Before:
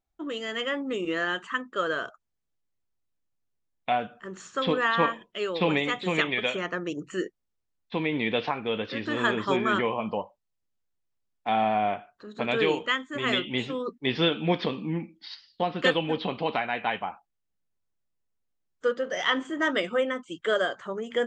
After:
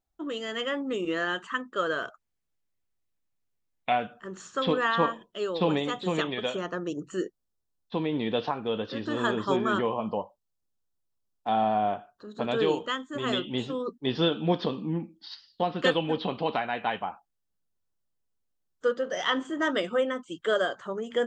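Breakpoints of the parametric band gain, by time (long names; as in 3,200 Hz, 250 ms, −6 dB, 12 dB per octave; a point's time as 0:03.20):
parametric band 2,200 Hz 0.55 octaves
−4.5 dB
from 0:02.03 +2 dB
from 0:04.13 −5.5 dB
from 0:04.98 −14.5 dB
from 0:15.32 −6.5 dB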